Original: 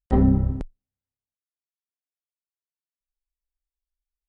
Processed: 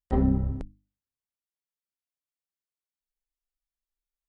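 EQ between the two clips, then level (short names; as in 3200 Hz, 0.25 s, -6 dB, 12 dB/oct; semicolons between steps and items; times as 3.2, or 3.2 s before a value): notches 50/100/150/200/250/300 Hz; -4.5 dB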